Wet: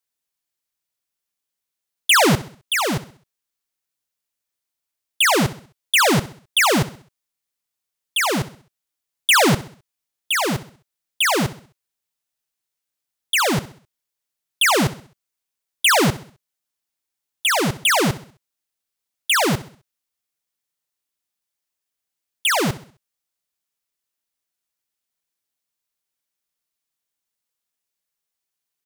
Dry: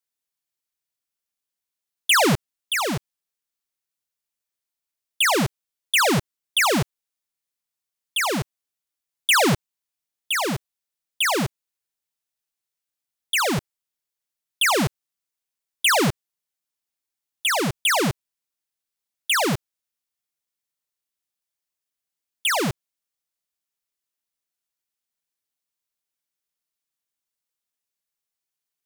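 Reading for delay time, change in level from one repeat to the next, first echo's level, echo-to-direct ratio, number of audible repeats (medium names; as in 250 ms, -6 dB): 65 ms, -7.5 dB, -16.0 dB, -15.0 dB, 3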